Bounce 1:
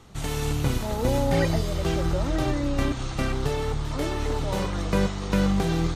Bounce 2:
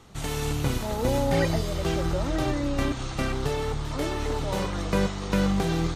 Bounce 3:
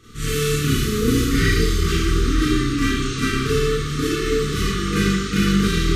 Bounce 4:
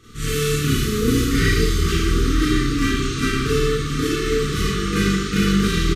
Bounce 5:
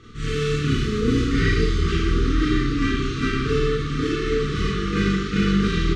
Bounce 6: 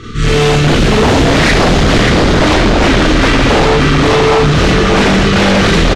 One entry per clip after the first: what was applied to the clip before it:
low-shelf EQ 170 Hz −3 dB
brick-wall band-stop 480–1,100 Hz; four-comb reverb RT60 0.78 s, combs from 26 ms, DRR −9.5 dB
single-tap delay 1,088 ms −13 dB
reversed playback; upward compression, threshold −22 dBFS; reversed playback; high-frequency loss of the air 130 metres; level −1.5 dB
single-tap delay 583 ms −4 dB; sine wavefolder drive 14 dB, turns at −5.5 dBFS

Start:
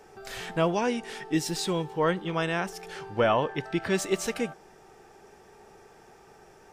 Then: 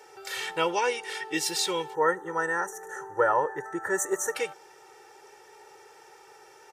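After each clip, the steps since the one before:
high-pass filter 930 Hz 6 dB per octave
gain on a spectral selection 0:01.95–0:04.35, 2,000–5,700 Hz −26 dB
comb filter 2.2 ms, depth 82%
level +3 dB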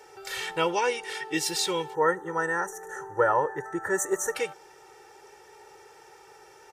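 low-shelf EQ 150 Hz +9.5 dB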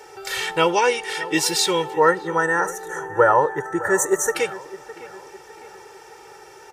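delay with a low-pass on its return 609 ms, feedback 43%, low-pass 2,400 Hz, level −16.5 dB
level +7.5 dB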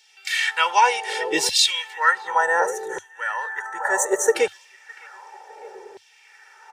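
auto-filter high-pass saw down 0.67 Hz 290–3,700 Hz
thirty-one-band graphic EQ 100 Hz +8 dB, 315 Hz −11 dB, 1,250 Hz −8 dB, 12,500 Hz −8 dB
one half of a high-frequency compander decoder only

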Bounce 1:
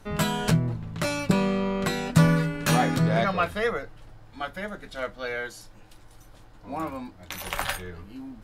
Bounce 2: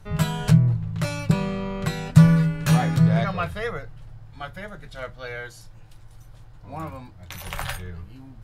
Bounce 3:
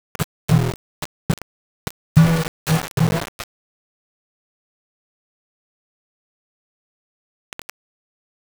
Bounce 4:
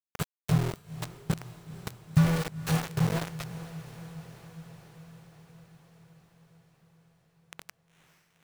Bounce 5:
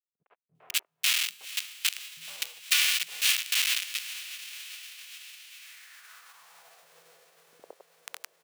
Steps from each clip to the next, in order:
low shelf with overshoot 180 Hz +7 dB, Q 3; level −2.5 dB
centre clipping without the shift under −17 dBFS
feedback delay with all-pass diffusion 479 ms, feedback 69%, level −15 dB; level −9 dB
spectral envelope flattened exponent 0.6; three-band delay without the direct sound lows, mids, highs 110/550 ms, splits 250/760 Hz; high-pass filter sweep 2,700 Hz → 480 Hz, 0:05.55–0:07.02; level +5 dB

